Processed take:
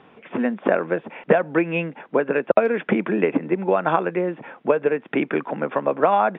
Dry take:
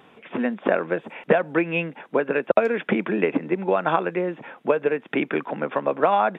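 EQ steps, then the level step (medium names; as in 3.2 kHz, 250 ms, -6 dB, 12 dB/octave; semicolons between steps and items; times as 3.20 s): distance through air 250 m; +2.5 dB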